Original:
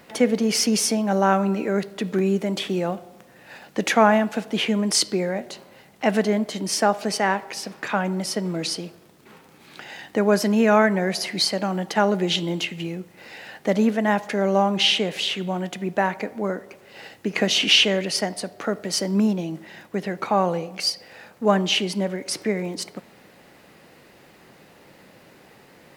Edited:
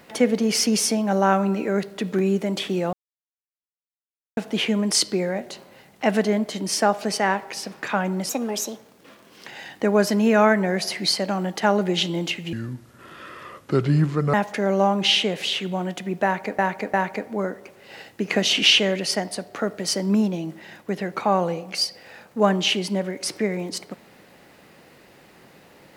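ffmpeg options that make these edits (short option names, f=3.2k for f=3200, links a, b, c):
-filter_complex "[0:a]asplit=9[a][b][c][d][e][f][g][h][i];[a]atrim=end=2.93,asetpts=PTS-STARTPTS,afade=t=out:st=2.926:d=0.004:c=hsin[j];[b]atrim=start=2.93:end=4.37,asetpts=PTS-STARTPTS,volume=0[k];[c]atrim=start=4.37:end=8.294,asetpts=PTS-STARTPTS,afade=t=in:d=0.004:c=hsin[l];[d]atrim=start=8.29:end=9.81,asetpts=PTS-STARTPTS,asetrate=56448,aresample=44100[m];[e]atrim=start=9.806:end=12.864[n];[f]atrim=start=12.86:end=14.09,asetpts=PTS-STARTPTS,asetrate=29988,aresample=44100,atrim=end_sample=79769,asetpts=PTS-STARTPTS[o];[g]atrim=start=14.086:end=16.342[p];[h]atrim=start=15.988:end=16.342[q];[i]atrim=start=15.988[r];[j][k][l]concat=n=3:v=0:a=1[s];[s][m]acrossfade=d=0.004:c1=hsin:c2=hsin[t];[t][n]acrossfade=d=0.004:c1=hsin:c2=hsin[u];[u][o]acrossfade=d=0.004:c1=hsin:c2=hsin[v];[v][p]acrossfade=d=0.004:c1=hsin:c2=hsin[w];[w][q]acrossfade=d=0.004:c1=hsin:c2=hsin[x];[x][r]acrossfade=d=0.004:c1=hsin:c2=hsin"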